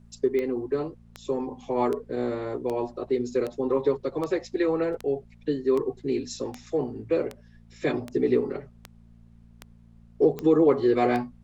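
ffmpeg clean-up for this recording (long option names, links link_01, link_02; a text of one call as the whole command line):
ffmpeg -i in.wav -af "adeclick=threshold=4,bandreject=frequency=57.1:width_type=h:width=4,bandreject=frequency=114.2:width_type=h:width=4,bandreject=frequency=171.3:width_type=h:width=4,bandreject=frequency=228.4:width_type=h:width=4,agate=range=-21dB:threshold=-45dB" out.wav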